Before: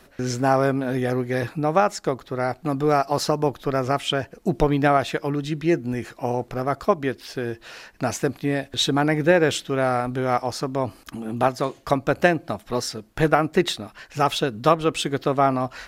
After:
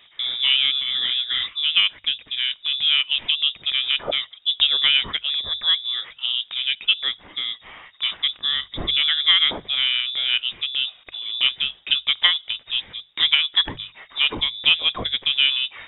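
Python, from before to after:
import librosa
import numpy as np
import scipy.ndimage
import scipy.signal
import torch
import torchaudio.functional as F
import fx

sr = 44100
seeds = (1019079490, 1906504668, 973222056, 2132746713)

y = fx.freq_invert(x, sr, carrier_hz=3700)
y = fx.hum_notches(y, sr, base_hz=50, count=3)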